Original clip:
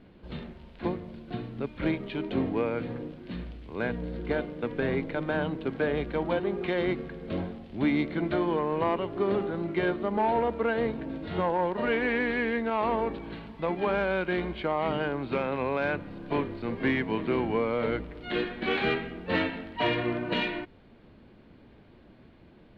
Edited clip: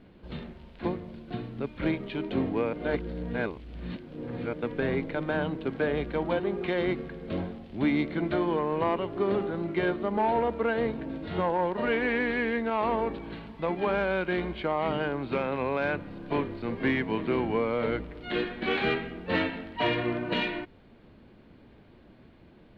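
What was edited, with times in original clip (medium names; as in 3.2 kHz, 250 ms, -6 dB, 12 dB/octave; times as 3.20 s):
2.73–4.53 s: reverse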